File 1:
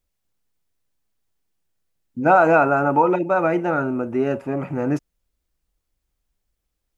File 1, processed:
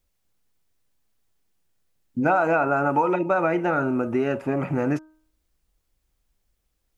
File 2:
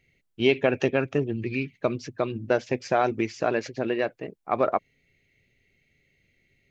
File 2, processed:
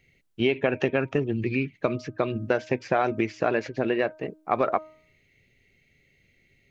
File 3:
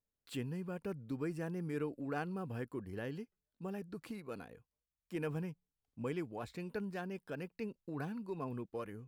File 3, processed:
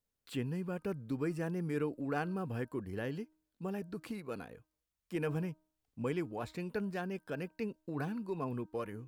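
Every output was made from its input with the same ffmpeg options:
-filter_complex "[0:a]acrossover=split=1300|3100[link_01][link_02][link_03];[link_01]acompressor=threshold=-24dB:ratio=4[link_04];[link_02]acompressor=threshold=-32dB:ratio=4[link_05];[link_03]acompressor=threshold=-55dB:ratio=4[link_06];[link_04][link_05][link_06]amix=inputs=3:normalize=0,bandreject=frequency=312.4:width_type=h:width=4,bandreject=frequency=624.8:width_type=h:width=4,bandreject=frequency=937.2:width_type=h:width=4,bandreject=frequency=1249.6:width_type=h:width=4,bandreject=frequency=1562:width_type=h:width=4,volume=3.5dB"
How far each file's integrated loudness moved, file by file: −3.5, 0.0, +3.5 LU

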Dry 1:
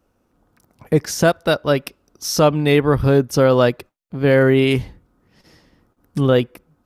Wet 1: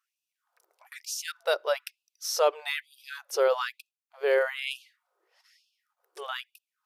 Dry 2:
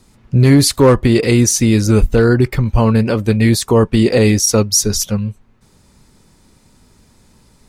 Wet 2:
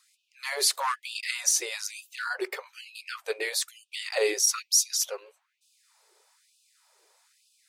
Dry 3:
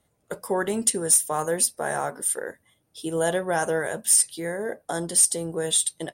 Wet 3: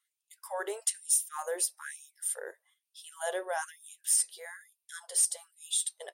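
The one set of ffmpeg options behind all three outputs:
-af "afftfilt=real='re*gte(b*sr/1024,340*pow(2500/340,0.5+0.5*sin(2*PI*1.1*pts/sr)))':imag='im*gte(b*sr/1024,340*pow(2500/340,0.5+0.5*sin(2*PI*1.1*pts/sr)))':win_size=1024:overlap=0.75,volume=-8dB"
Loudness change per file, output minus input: −12.5, −14.5, −8.0 LU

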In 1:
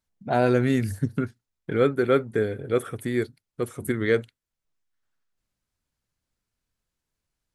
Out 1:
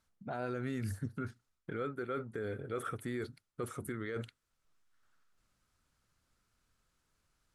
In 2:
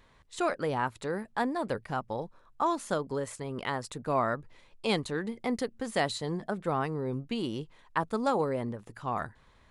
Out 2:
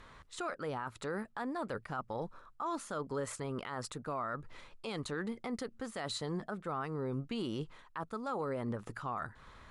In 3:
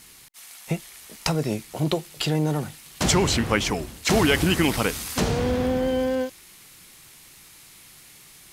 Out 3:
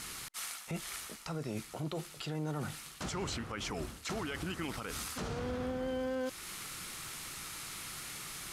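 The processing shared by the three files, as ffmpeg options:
-af "lowpass=12000,equalizer=frequency=1300:width_type=o:width=0.44:gain=8,areverse,acompressor=threshold=-34dB:ratio=5,areverse,alimiter=level_in=9.5dB:limit=-24dB:level=0:latency=1:release=233,volume=-9.5dB,volume=5dB"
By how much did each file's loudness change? −15.0, −7.0, −15.5 LU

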